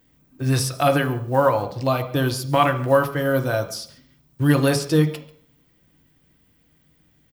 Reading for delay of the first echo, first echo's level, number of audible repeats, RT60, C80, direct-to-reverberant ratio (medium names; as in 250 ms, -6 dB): 141 ms, -21.5 dB, 1, 0.60 s, 14.5 dB, 5.0 dB